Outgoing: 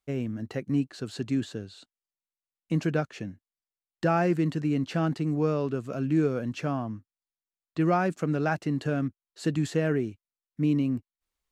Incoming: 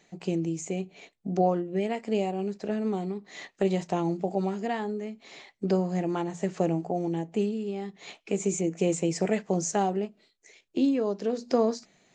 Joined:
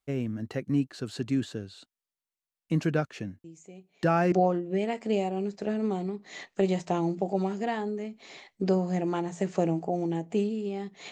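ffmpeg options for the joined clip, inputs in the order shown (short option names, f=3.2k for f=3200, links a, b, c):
-filter_complex "[1:a]asplit=2[a][b];[0:a]apad=whole_dur=11.11,atrim=end=11.11,atrim=end=4.322[c];[b]atrim=start=1.338:end=8.13[d];[a]atrim=start=0.46:end=1.34,asetpts=PTS-STARTPTS,volume=-16.5dB,afade=t=in:d=0.004:c=hsin,afade=t=out:st=0.876:d=0.004:c=hsin,adelay=3440[e];[c][d]acrossfade=d=0.004:c1=hsin:c2=hsin[f];[f][e]amix=inputs=2:normalize=0"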